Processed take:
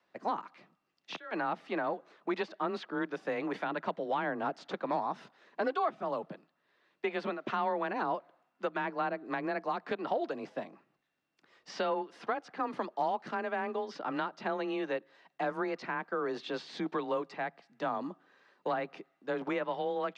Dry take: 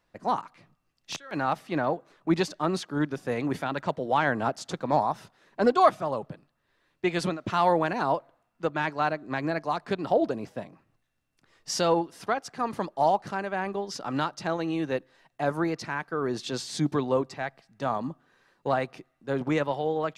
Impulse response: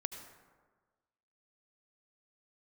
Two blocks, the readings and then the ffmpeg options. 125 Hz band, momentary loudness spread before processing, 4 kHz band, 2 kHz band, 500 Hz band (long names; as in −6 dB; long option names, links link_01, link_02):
−15.5 dB, 10 LU, −9.0 dB, −5.0 dB, −6.5 dB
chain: -filter_complex "[0:a]acrossover=split=3600[link_01][link_02];[link_02]acompressor=threshold=-58dB:ratio=4[link_03];[link_01][link_03]amix=inputs=2:normalize=0,afreqshift=23,highpass=250,lowpass=4700,acrossover=split=460|1200[link_04][link_05][link_06];[link_04]acompressor=threshold=-38dB:ratio=4[link_07];[link_05]acompressor=threshold=-36dB:ratio=4[link_08];[link_06]acompressor=threshold=-39dB:ratio=4[link_09];[link_07][link_08][link_09]amix=inputs=3:normalize=0"